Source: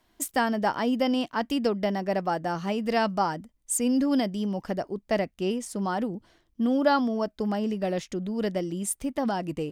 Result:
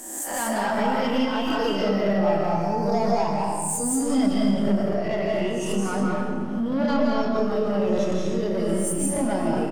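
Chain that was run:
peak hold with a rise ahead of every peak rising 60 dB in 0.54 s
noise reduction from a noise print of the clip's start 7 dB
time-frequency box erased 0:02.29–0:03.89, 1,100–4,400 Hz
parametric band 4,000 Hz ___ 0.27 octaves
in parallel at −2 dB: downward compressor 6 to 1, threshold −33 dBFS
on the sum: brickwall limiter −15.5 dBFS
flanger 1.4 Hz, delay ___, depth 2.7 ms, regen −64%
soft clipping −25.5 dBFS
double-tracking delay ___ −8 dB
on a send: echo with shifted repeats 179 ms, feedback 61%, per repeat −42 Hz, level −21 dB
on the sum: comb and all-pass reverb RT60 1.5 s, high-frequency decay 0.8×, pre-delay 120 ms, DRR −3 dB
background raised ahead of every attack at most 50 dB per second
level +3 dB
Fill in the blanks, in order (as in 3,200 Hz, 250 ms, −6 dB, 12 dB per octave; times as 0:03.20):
−3 dB, 4.6 ms, 30 ms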